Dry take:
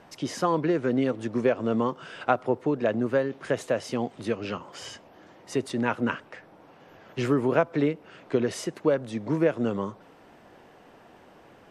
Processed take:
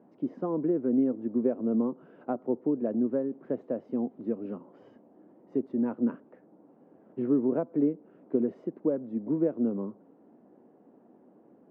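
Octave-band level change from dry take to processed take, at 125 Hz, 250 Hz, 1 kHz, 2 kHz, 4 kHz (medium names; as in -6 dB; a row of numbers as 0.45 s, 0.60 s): -9.0 dB, +0.5 dB, -13.0 dB, under -20 dB, under -30 dB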